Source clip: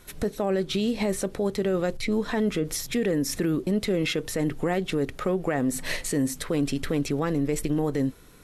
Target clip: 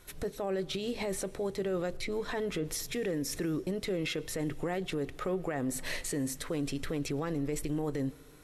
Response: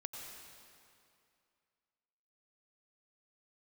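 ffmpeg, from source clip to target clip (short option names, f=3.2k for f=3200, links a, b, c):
-filter_complex "[0:a]equalizer=f=220:t=o:w=0.2:g=-13,alimiter=limit=-21dB:level=0:latency=1:release=33,asplit=2[a][b];[1:a]atrim=start_sample=2205[c];[b][c]afir=irnorm=-1:irlink=0,volume=-15.5dB[d];[a][d]amix=inputs=2:normalize=0,volume=-5.5dB"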